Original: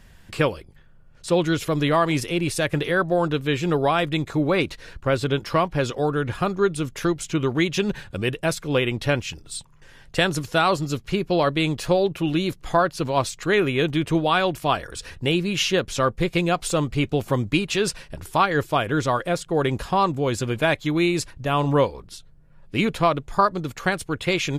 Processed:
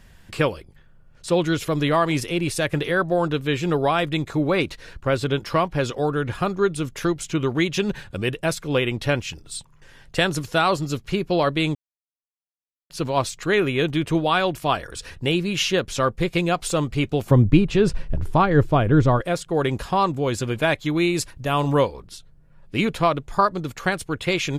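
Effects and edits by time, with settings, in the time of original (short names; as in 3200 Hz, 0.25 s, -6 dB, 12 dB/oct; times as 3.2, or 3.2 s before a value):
11.75–12.9 mute
17.31–19.21 tilt -3.5 dB/oct
21.14–21.82 high shelf 10000 Hz -> 5100 Hz +7 dB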